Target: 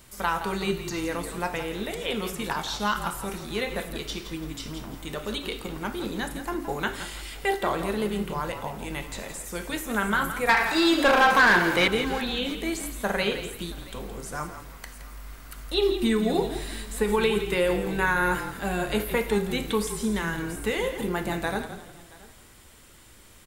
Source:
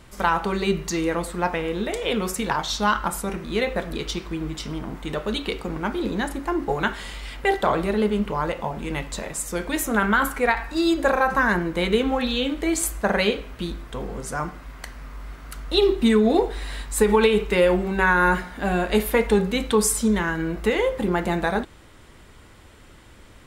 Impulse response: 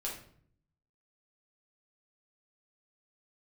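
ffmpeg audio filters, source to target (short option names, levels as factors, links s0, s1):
-filter_complex "[0:a]asplit=2[s0][s1];[1:a]atrim=start_sample=2205[s2];[s1][s2]afir=irnorm=-1:irlink=0,volume=0.266[s3];[s0][s3]amix=inputs=2:normalize=0,asettb=1/sr,asplit=3[s4][s5][s6];[s4]atrim=end=10.494[s7];[s5]atrim=start=10.49:end=11.88,asetpts=PTS-STARTPTS,afade=t=in:d=0.004:c=qsin,afade=t=out:st=1.386:d=0.004:c=qsin,asplit=2[s8][s9];[s9]highpass=f=720:p=1,volume=11.2,asoftclip=type=tanh:threshold=0.668[s10];[s8][s10]amix=inputs=2:normalize=0,lowpass=f=7500:p=1,volume=0.501[s11];[s6]atrim=start=11.876[s12];[s7][s11]acrossfade=d=0.004:c1=hsin:c2=qsin[s13];[s13][s12]acrossfade=d=0.004:c1=qsin:c2=hsin,aemphasis=mode=production:type=75kf,asplit=2[s14][s15];[s15]aecho=0:1:675:0.075[s16];[s14][s16]amix=inputs=2:normalize=0,acrossover=split=3600[s17][s18];[s18]acompressor=threshold=0.0316:ratio=4:attack=1:release=60[s19];[s17][s19]amix=inputs=2:normalize=0,asplit=4[s20][s21][s22][s23];[s21]adelay=168,afreqshift=-41,volume=0.299[s24];[s22]adelay=336,afreqshift=-82,volume=0.0923[s25];[s23]adelay=504,afreqshift=-123,volume=0.0288[s26];[s20][s24][s25][s26]amix=inputs=4:normalize=0,volume=0.398"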